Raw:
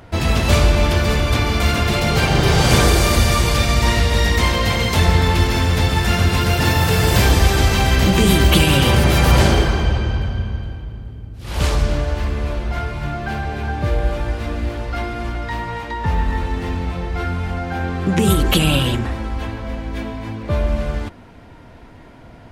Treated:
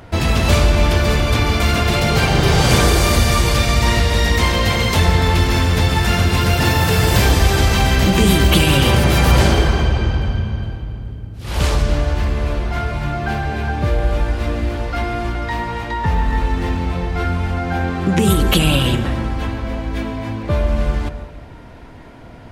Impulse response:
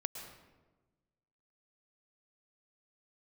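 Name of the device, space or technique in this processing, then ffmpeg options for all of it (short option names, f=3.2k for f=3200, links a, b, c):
ducked reverb: -filter_complex "[0:a]asplit=3[a][b][c];[1:a]atrim=start_sample=2205[d];[b][d]afir=irnorm=-1:irlink=0[e];[c]apad=whole_len=992910[f];[e][f]sidechaincompress=threshold=-17dB:ratio=8:attack=16:release=193,volume=-1.5dB[g];[a][g]amix=inputs=2:normalize=0,volume=-2dB"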